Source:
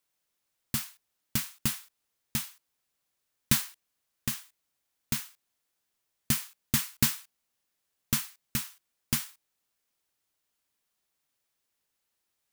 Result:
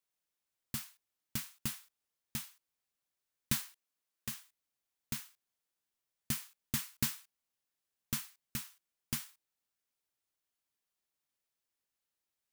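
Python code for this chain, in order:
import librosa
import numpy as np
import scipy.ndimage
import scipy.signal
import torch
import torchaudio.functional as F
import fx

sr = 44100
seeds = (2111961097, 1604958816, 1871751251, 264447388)

y = fx.highpass(x, sr, hz=170.0, slope=12, at=(3.63, 4.28))
y = y * 10.0 ** (-8.5 / 20.0)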